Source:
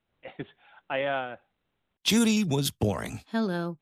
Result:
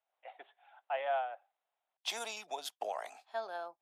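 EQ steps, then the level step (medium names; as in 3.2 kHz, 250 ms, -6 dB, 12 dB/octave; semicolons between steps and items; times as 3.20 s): ladder high-pass 650 Hz, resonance 65%; treble shelf 11 kHz -9.5 dB; 0.0 dB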